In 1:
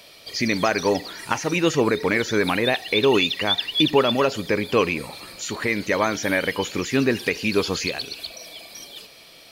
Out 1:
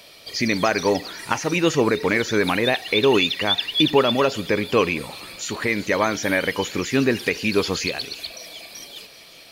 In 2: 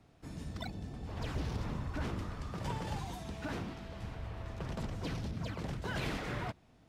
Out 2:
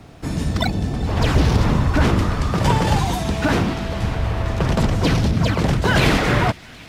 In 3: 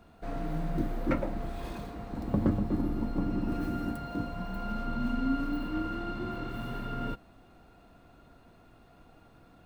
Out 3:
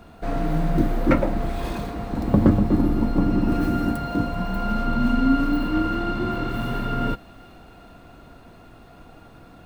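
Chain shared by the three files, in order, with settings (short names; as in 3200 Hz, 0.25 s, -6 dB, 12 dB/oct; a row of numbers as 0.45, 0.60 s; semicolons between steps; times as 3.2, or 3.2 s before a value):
thin delay 0.386 s, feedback 67%, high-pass 2000 Hz, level -19 dB; normalise peaks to -3 dBFS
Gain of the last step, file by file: +1.0, +21.0, +10.5 dB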